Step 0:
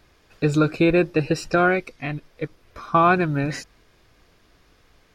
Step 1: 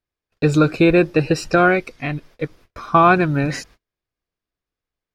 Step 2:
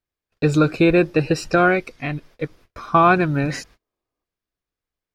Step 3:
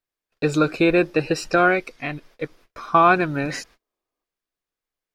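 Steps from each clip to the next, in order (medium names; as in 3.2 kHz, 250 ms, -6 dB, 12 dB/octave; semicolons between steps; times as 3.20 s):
gate -48 dBFS, range -34 dB; trim +4 dB
time-frequency box 3.80–4.24 s, 220–1300 Hz +8 dB; trim -1.5 dB
peaking EQ 74 Hz -11 dB 2.7 oct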